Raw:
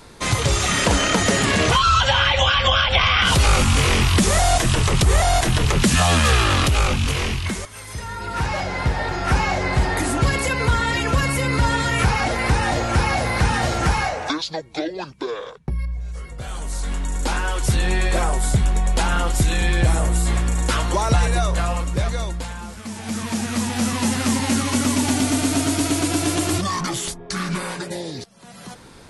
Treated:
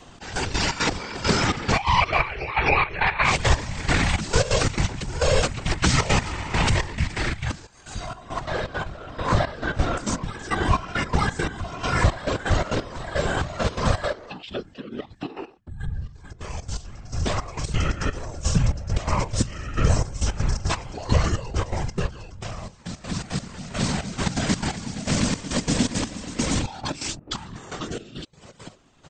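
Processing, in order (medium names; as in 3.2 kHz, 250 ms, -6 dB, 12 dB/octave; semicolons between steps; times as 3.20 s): whisper effect; trance gate "xx..x.xx.x....x" 170 bpm -12 dB; pitch shift -5 st; trim -1.5 dB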